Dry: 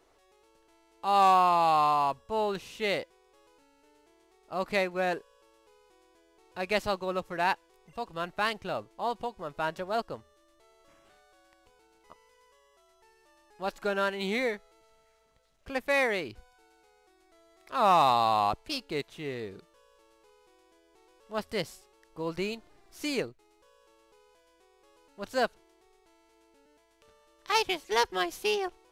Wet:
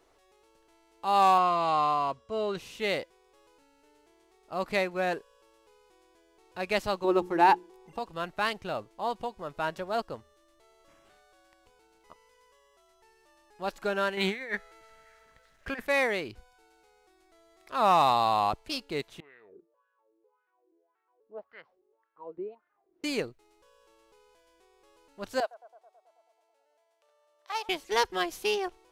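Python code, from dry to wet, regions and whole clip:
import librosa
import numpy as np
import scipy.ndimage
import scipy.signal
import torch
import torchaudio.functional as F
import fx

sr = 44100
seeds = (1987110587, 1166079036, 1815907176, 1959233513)

y = fx.chain(x, sr, fx.lowpass(hz=7600.0, slope=12),
    fx.notch_comb(f0_hz=870.0), at=(1.38, 2.57))
y = fx.chain(y, sr, fx.hum_notches(base_hz=60, count=7),
    fx.small_body(hz=(350.0, 830.0), ring_ms=30, db=14), at=(7.04, 7.99))
y = fx.chain(y, sr, fx.peak_eq(hz=1700.0, db=12.5, octaves=0.73),
    fx.over_compress(threshold_db=-31.0, ratio=-0.5), at=(14.17, 15.87))
y = fx.chain(y, sr, fx.wah_lfo(hz=1.8, low_hz=330.0, high_hz=1600.0, q=4.9),
    fx.air_absorb(metres=280.0), at=(19.2, 23.04))
y = fx.chain(y, sr, fx.ladder_highpass(hz=550.0, resonance_pct=55),
    fx.echo_bbd(ms=108, stages=1024, feedback_pct=70, wet_db=-19), at=(25.4, 27.69))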